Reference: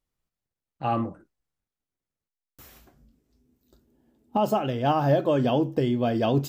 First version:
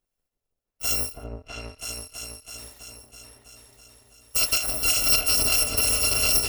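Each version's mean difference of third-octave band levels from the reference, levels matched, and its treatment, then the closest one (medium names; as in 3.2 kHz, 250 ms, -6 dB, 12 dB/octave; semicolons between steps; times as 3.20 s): 17.5 dB: bit-reversed sample order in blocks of 256 samples; peaking EQ 530 Hz +9.5 dB 1.4 oct; on a send: delay with an opening low-pass 327 ms, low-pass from 750 Hz, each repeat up 2 oct, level 0 dB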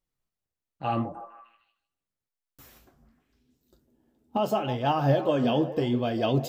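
2.0 dB: repeats whose band climbs or falls 153 ms, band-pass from 560 Hz, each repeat 0.7 oct, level -9.5 dB; dynamic bell 3.3 kHz, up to +4 dB, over -47 dBFS, Q 1; flange 0.81 Hz, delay 5.1 ms, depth 8.6 ms, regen +63%; trim +1.5 dB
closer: second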